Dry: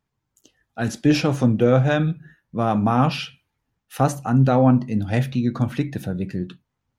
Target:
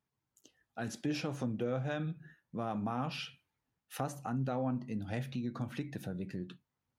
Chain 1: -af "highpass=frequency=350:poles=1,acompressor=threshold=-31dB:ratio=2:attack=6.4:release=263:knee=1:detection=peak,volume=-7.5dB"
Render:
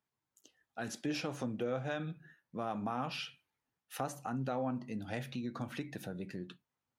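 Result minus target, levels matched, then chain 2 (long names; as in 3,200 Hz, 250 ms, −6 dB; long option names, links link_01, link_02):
125 Hz band −3.0 dB
-af "highpass=frequency=110:poles=1,acompressor=threshold=-31dB:ratio=2:attack=6.4:release=263:knee=1:detection=peak,volume=-7.5dB"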